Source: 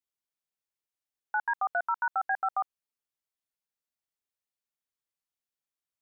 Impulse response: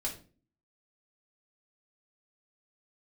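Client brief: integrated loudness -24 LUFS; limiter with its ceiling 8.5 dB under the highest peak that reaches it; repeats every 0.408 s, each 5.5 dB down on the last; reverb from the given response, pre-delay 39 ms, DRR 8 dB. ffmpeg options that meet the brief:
-filter_complex "[0:a]alimiter=level_in=5.5dB:limit=-24dB:level=0:latency=1,volume=-5.5dB,aecho=1:1:408|816|1224|1632|2040|2448|2856:0.531|0.281|0.149|0.079|0.0419|0.0222|0.0118,asplit=2[a][b];[1:a]atrim=start_sample=2205,adelay=39[c];[b][c]afir=irnorm=-1:irlink=0,volume=-10dB[d];[a][d]amix=inputs=2:normalize=0,volume=14.5dB"

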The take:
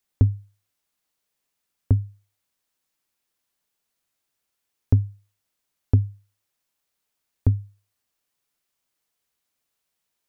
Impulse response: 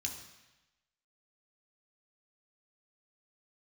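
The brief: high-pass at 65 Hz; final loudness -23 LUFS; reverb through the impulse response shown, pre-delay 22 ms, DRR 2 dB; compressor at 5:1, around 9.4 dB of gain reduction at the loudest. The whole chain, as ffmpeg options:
-filter_complex "[0:a]highpass=65,acompressor=threshold=-24dB:ratio=5,asplit=2[a][b];[1:a]atrim=start_sample=2205,adelay=22[c];[b][c]afir=irnorm=-1:irlink=0,volume=-2dB[d];[a][d]amix=inputs=2:normalize=0,volume=6dB"

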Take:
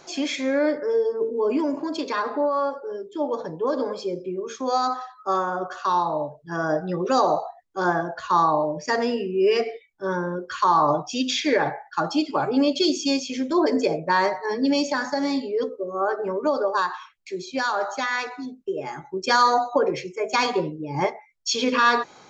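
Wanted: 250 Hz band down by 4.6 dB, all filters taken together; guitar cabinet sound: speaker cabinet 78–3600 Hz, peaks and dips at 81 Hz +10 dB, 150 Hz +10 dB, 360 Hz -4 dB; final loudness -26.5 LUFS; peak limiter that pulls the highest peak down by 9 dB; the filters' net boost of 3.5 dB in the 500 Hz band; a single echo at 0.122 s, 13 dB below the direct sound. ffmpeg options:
-af "equalizer=f=250:t=o:g=-8,equalizer=f=500:t=o:g=7,alimiter=limit=-14.5dB:level=0:latency=1,highpass=78,equalizer=f=81:t=q:w=4:g=10,equalizer=f=150:t=q:w=4:g=10,equalizer=f=360:t=q:w=4:g=-4,lowpass=f=3.6k:w=0.5412,lowpass=f=3.6k:w=1.3066,aecho=1:1:122:0.224,volume=-1.5dB"

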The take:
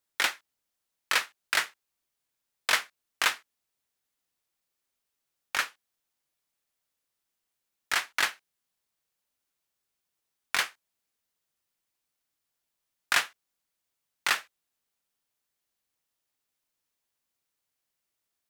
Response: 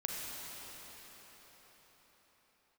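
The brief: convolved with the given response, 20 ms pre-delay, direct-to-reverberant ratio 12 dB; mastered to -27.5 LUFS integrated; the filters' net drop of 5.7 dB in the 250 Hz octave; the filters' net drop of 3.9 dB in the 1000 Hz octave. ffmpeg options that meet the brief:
-filter_complex "[0:a]equalizer=f=250:t=o:g=-8,equalizer=f=1k:t=o:g=-5,asplit=2[a][b];[1:a]atrim=start_sample=2205,adelay=20[c];[b][c]afir=irnorm=-1:irlink=0,volume=-15dB[d];[a][d]amix=inputs=2:normalize=0,volume=3dB"

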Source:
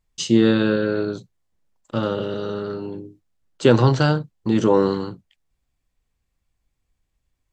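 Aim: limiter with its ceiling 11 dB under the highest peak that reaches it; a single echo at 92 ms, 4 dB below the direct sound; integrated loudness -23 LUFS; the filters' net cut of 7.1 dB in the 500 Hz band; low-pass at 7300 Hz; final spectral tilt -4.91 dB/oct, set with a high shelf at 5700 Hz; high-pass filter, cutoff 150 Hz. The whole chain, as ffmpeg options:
-af "highpass=150,lowpass=7.3k,equalizer=f=500:t=o:g=-9,highshelf=f=5.7k:g=7.5,alimiter=limit=-17.5dB:level=0:latency=1,aecho=1:1:92:0.631,volume=5dB"

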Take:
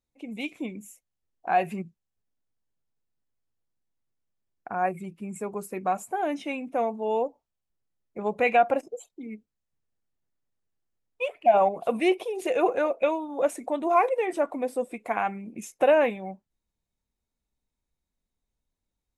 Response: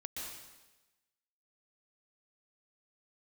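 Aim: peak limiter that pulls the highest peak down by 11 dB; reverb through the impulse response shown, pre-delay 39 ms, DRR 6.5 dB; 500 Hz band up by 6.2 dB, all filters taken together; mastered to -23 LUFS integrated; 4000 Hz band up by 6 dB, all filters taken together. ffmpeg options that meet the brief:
-filter_complex "[0:a]equalizer=f=500:t=o:g=7.5,equalizer=f=4k:t=o:g=9,alimiter=limit=-15.5dB:level=0:latency=1,asplit=2[a][b];[1:a]atrim=start_sample=2205,adelay=39[c];[b][c]afir=irnorm=-1:irlink=0,volume=-5.5dB[d];[a][d]amix=inputs=2:normalize=0,volume=3dB"

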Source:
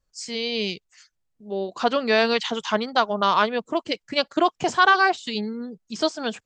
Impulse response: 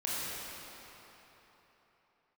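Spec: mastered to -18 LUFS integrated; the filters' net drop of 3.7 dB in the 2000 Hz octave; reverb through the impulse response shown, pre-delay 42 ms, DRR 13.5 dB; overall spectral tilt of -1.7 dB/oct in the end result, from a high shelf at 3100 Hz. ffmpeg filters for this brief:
-filter_complex "[0:a]equalizer=f=2k:t=o:g=-4,highshelf=f=3.1k:g=-5,asplit=2[a][b];[1:a]atrim=start_sample=2205,adelay=42[c];[b][c]afir=irnorm=-1:irlink=0,volume=-20dB[d];[a][d]amix=inputs=2:normalize=0,volume=6.5dB"

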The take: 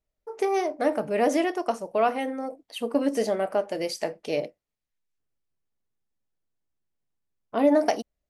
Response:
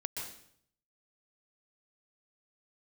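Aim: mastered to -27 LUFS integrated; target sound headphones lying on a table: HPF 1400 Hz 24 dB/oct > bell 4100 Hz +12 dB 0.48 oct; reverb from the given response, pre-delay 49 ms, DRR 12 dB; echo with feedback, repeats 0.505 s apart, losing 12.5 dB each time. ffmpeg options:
-filter_complex "[0:a]aecho=1:1:505|1010|1515:0.237|0.0569|0.0137,asplit=2[a][b];[1:a]atrim=start_sample=2205,adelay=49[c];[b][c]afir=irnorm=-1:irlink=0,volume=-13dB[d];[a][d]amix=inputs=2:normalize=0,highpass=f=1.4k:w=0.5412,highpass=f=1.4k:w=1.3066,equalizer=f=4.1k:t=o:w=0.48:g=12,volume=8.5dB"

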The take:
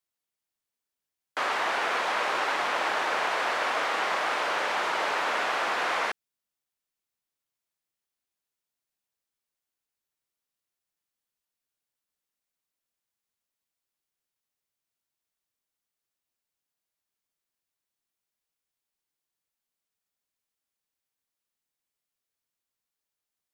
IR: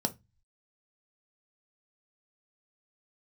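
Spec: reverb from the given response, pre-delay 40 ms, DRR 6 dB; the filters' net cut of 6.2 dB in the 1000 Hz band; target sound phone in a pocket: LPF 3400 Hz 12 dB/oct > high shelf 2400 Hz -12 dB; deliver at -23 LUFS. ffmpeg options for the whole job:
-filter_complex "[0:a]equalizer=f=1k:t=o:g=-5.5,asplit=2[a][b];[1:a]atrim=start_sample=2205,adelay=40[c];[b][c]afir=irnorm=-1:irlink=0,volume=-11dB[d];[a][d]amix=inputs=2:normalize=0,lowpass=3.4k,highshelf=f=2.4k:g=-12,volume=8.5dB"

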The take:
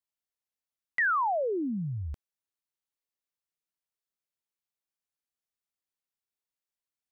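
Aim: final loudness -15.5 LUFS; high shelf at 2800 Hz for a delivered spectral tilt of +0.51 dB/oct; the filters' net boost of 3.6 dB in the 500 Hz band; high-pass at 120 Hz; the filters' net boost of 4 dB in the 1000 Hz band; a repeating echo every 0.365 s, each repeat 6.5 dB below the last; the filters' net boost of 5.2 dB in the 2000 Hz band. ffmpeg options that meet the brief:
-af "highpass=120,equalizer=f=500:t=o:g=3.5,equalizer=f=1k:t=o:g=3,equalizer=f=2k:t=o:g=7.5,highshelf=f=2.8k:g=-7,aecho=1:1:365|730|1095|1460|1825|2190:0.473|0.222|0.105|0.0491|0.0231|0.0109,volume=9.5dB"

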